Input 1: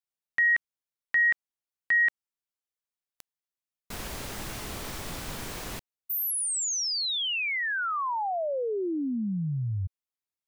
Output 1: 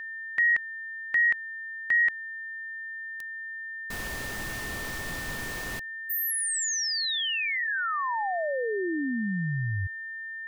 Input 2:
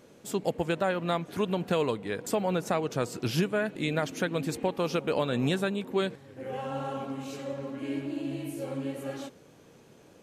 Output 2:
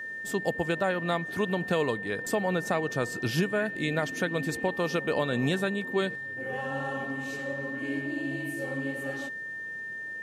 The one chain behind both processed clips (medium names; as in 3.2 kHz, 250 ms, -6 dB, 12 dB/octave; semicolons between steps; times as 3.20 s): whistle 1.8 kHz -35 dBFS